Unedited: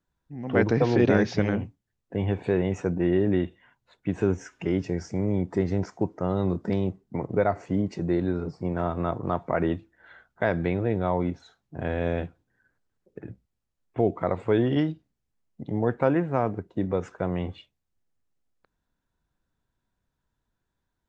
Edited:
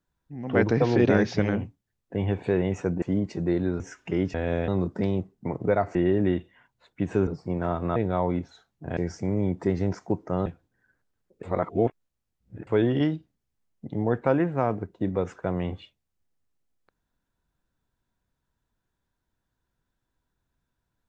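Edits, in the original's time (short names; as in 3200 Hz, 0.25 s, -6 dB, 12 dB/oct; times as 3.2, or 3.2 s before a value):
3.02–4.34 swap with 7.64–8.42
4.88–6.37 swap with 11.88–12.22
9.11–10.87 cut
13.19–14.43 reverse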